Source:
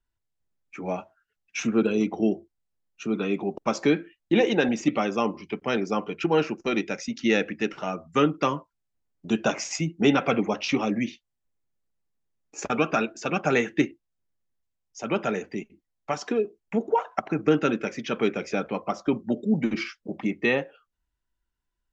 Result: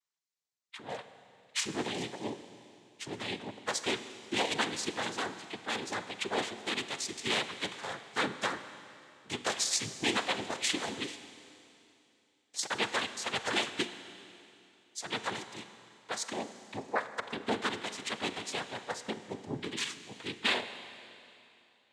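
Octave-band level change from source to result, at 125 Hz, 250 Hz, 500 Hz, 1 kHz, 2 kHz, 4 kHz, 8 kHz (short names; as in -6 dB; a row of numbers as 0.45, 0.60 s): -14.0 dB, -15.5 dB, -13.0 dB, -7.0 dB, -4.0 dB, +3.0 dB, n/a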